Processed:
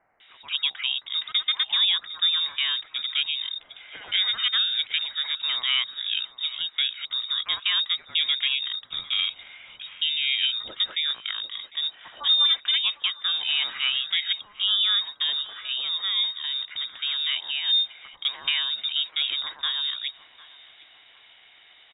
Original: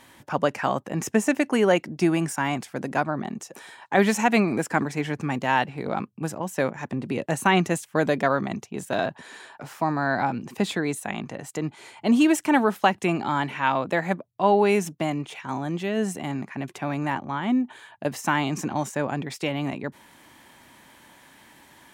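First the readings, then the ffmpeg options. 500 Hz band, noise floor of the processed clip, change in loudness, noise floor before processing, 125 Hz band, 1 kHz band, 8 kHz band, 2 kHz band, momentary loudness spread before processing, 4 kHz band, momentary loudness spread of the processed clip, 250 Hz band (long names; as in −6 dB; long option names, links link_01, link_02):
below −30 dB, −54 dBFS, +1.5 dB, −55 dBFS, below −30 dB, −17.0 dB, below −40 dB, −3.0 dB, 12 LU, +18.5 dB, 8 LU, below −35 dB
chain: -filter_complex "[0:a]acrossover=split=3000[link_01][link_02];[link_01]adelay=200[link_03];[link_03][link_02]amix=inputs=2:normalize=0,lowpass=frequency=3300:width_type=q:width=0.5098,lowpass=frequency=3300:width_type=q:width=0.6013,lowpass=frequency=3300:width_type=q:width=0.9,lowpass=frequency=3300:width_type=q:width=2.563,afreqshift=-3900,asplit=2[link_04][link_05];[link_05]adelay=752,lowpass=frequency=1000:poles=1,volume=-13dB,asplit=2[link_06][link_07];[link_07]adelay=752,lowpass=frequency=1000:poles=1,volume=0.54,asplit=2[link_08][link_09];[link_09]adelay=752,lowpass=frequency=1000:poles=1,volume=0.54,asplit=2[link_10][link_11];[link_11]adelay=752,lowpass=frequency=1000:poles=1,volume=0.54,asplit=2[link_12][link_13];[link_13]adelay=752,lowpass=frequency=1000:poles=1,volume=0.54,asplit=2[link_14][link_15];[link_15]adelay=752,lowpass=frequency=1000:poles=1,volume=0.54[link_16];[link_06][link_08][link_10][link_12][link_14][link_16]amix=inputs=6:normalize=0[link_17];[link_04][link_17]amix=inputs=2:normalize=0,alimiter=limit=-13dB:level=0:latency=1:release=378"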